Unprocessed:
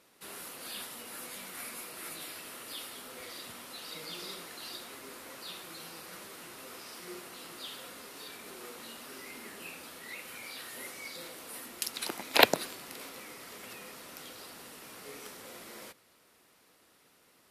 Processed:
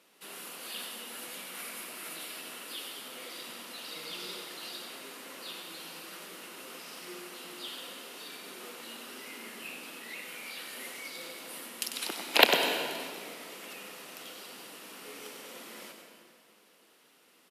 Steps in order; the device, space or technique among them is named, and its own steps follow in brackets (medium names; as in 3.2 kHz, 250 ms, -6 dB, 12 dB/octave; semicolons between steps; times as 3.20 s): PA in a hall (high-pass 170 Hz 24 dB/octave; peaking EQ 2.9 kHz +5.5 dB 0.44 oct; delay 96 ms -8.5 dB; reverberation RT60 2.1 s, pre-delay 109 ms, DRR 5.5 dB); trim -1 dB